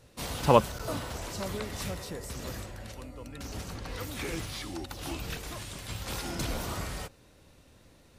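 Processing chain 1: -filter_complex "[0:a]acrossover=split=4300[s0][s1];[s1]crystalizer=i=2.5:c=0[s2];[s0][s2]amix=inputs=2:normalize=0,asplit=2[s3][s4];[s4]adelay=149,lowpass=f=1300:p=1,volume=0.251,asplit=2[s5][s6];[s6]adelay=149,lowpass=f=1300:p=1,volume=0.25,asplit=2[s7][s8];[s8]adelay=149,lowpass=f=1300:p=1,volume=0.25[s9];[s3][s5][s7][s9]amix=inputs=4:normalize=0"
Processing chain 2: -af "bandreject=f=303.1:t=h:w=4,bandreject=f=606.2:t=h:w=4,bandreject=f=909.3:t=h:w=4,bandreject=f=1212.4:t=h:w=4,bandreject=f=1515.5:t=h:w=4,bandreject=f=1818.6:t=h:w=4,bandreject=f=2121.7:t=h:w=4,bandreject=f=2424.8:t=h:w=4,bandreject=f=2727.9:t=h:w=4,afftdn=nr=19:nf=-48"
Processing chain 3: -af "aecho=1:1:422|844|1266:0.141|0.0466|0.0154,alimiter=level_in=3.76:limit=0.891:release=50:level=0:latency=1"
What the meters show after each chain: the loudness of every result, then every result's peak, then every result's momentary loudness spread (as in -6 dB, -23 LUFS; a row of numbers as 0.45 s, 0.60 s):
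-31.0 LUFS, -34.0 LUFS, -24.5 LUFS; -4.5 dBFS, -4.5 dBFS, -1.0 dBFS; 12 LU, 15 LU, 12 LU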